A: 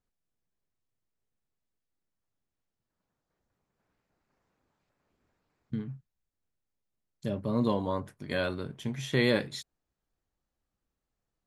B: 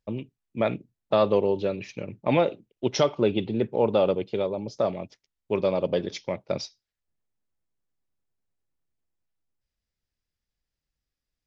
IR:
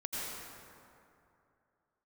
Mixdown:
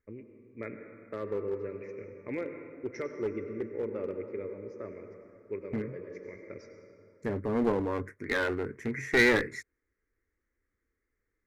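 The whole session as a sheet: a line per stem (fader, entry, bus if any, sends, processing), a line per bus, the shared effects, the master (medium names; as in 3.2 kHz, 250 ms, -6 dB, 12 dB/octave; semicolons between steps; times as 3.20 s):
+3.0 dB, 0.00 s, no send, none
-17.0 dB, 0.00 s, send -6.5 dB, bass shelf 130 Hz +7.5 dB; auto duck -10 dB, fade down 0.20 s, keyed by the first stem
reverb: on, RT60 2.6 s, pre-delay 78 ms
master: FFT filter 100 Hz 0 dB, 150 Hz -11 dB, 280 Hz +2 dB, 450 Hz +6 dB, 730 Hz -16 dB, 1.1 kHz -3 dB, 2.1 kHz +12 dB, 3.2 kHz -29 dB, 5.8 kHz -7 dB, 10 kHz -12 dB; one-sided clip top -27.5 dBFS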